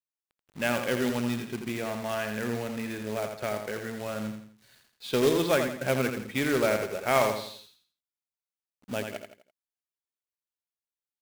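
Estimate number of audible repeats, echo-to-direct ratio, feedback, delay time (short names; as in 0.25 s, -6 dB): 4, -6.0 dB, 38%, 84 ms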